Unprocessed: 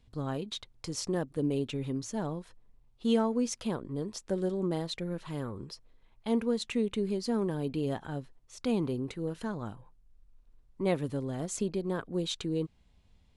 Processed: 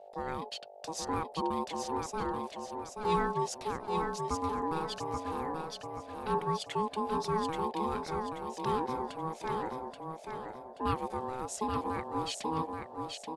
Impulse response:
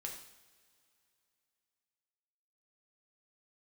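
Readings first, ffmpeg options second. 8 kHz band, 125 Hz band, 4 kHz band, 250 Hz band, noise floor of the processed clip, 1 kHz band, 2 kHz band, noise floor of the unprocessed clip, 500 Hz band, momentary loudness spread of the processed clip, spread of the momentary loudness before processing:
−2.0 dB, −5.5 dB, −1.5 dB, −6.5 dB, −50 dBFS, +11.5 dB, +2.0 dB, −64 dBFS, −2.0 dB, 9 LU, 10 LU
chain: -af "aeval=exprs='val(0)+0.00398*(sin(2*PI*50*n/s)+sin(2*PI*2*50*n/s)/2+sin(2*PI*3*50*n/s)/3+sin(2*PI*4*50*n/s)/4+sin(2*PI*5*50*n/s)/5)':channel_layout=same,aeval=exprs='val(0)*sin(2*PI*640*n/s)':channel_layout=same,aecho=1:1:830|1660|2490|3320|4150:0.596|0.22|0.0815|0.0302|0.0112"

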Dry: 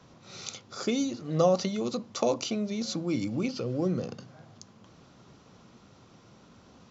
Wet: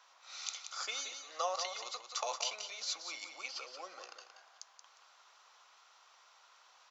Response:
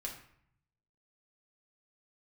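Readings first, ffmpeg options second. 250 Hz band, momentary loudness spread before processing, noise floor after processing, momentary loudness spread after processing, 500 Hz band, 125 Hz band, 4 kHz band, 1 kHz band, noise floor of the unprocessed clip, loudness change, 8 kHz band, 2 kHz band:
−38.5 dB, 15 LU, −65 dBFS, 19 LU, −16.5 dB, below −40 dB, −1.0 dB, −4.5 dB, −57 dBFS, −9.5 dB, can't be measured, −1.0 dB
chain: -filter_complex "[0:a]highpass=frequency=850:width=0.5412,highpass=frequency=850:width=1.3066,asplit=2[link_01][link_02];[link_02]aecho=0:1:178|356|534:0.398|0.0955|0.0229[link_03];[link_01][link_03]amix=inputs=2:normalize=0,volume=-1.5dB"

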